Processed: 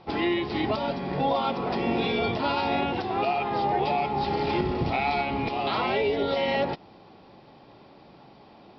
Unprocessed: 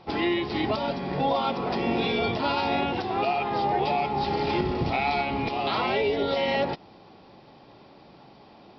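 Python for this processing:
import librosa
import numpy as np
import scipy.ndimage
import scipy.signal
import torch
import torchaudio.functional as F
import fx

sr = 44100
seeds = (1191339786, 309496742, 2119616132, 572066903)

y = fx.air_absorb(x, sr, metres=58.0)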